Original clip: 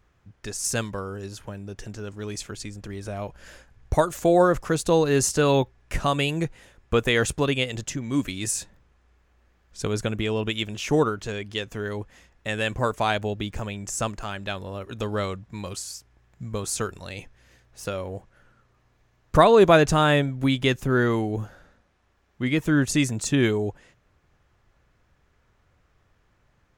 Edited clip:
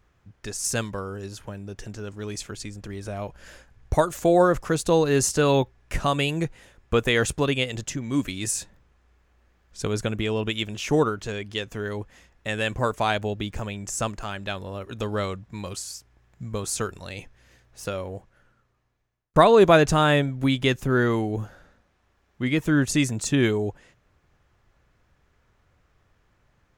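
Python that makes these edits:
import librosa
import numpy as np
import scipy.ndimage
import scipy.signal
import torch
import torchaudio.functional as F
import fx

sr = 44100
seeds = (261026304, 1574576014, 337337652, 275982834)

y = fx.edit(x, sr, fx.fade_out_span(start_s=17.97, length_s=1.39), tone=tone)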